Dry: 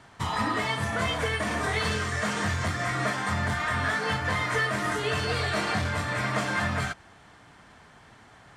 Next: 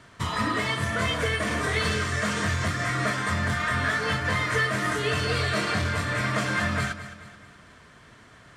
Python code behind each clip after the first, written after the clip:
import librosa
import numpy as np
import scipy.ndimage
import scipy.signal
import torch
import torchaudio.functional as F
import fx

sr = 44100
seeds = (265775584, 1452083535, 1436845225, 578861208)

y = fx.peak_eq(x, sr, hz=820.0, db=-14.5, octaves=0.22)
y = fx.echo_feedback(y, sr, ms=215, feedback_pct=45, wet_db=-13.5)
y = y * librosa.db_to_amplitude(2.0)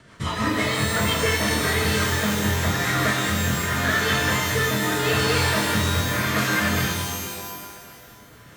y = fx.rotary_switch(x, sr, hz=6.0, then_hz=0.85, switch_at_s=1.3)
y = fx.rev_shimmer(y, sr, seeds[0], rt60_s=1.6, semitones=12, shimmer_db=-2, drr_db=3.5)
y = y * librosa.db_to_amplitude(3.5)